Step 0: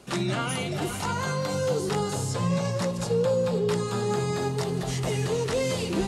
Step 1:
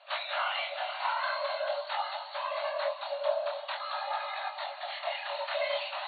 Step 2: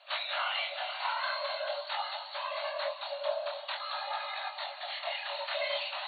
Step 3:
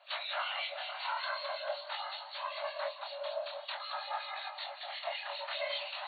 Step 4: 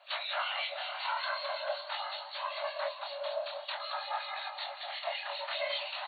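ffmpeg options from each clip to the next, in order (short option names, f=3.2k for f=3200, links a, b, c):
-af "afftfilt=real='hypot(re,im)*cos(2*PI*random(0))':imag='hypot(re,im)*sin(2*PI*random(1))':win_size=512:overlap=0.75,flanger=delay=19:depth=7.5:speed=0.46,afftfilt=real='re*between(b*sr/4096,550,4500)':imag='im*between(b*sr/4096,550,4500)':win_size=4096:overlap=0.75,volume=9dB"
-af "highshelf=f=2.4k:g=9,volume=-4dB"
-filter_complex "[0:a]acrossover=split=2000[a][b];[a]aeval=exprs='val(0)*(1-0.7/2+0.7/2*cos(2*PI*5.3*n/s))':c=same[c];[b]aeval=exprs='val(0)*(1-0.7/2-0.7/2*cos(2*PI*5.3*n/s))':c=same[d];[c][d]amix=inputs=2:normalize=0"
-af "aecho=1:1:470:0.168,volume=2dB"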